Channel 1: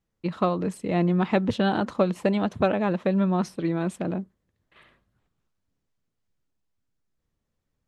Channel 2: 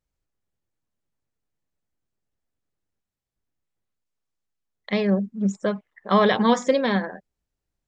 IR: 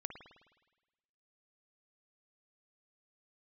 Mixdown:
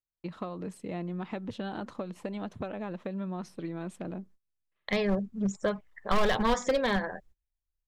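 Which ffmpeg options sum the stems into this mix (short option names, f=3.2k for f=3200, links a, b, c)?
-filter_complex "[0:a]acompressor=threshold=-24dB:ratio=6,volume=0dB[a];[1:a]asoftclip=type=hard:threshold=-15dB,asubboost=boost=11.5:cutoff=65,aeval=exprs='0.251*(abs(mod(val(0)/0.251+3,4)-2)-1)':c=same,volume=1dB,asplit=2[b][c];[c]apad=whole_len=347151[d];[a][d]sidechaingate=range=-8dB:threshold=-58dB:ratio=16:detection=peak[e];[e][b]amix=inputs=2:normalize=0,agate=range=-22dB:threshold=-53dB:ratio=16:detection=peak,acompressor=threshold=-31dB:ratio=1.5"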